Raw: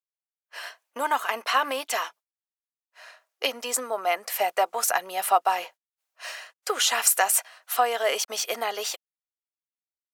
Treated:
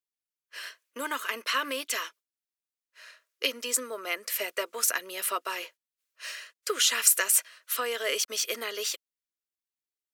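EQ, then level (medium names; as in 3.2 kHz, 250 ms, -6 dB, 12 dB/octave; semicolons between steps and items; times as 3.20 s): static phaser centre 320 Hz, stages 4; 0.0 dB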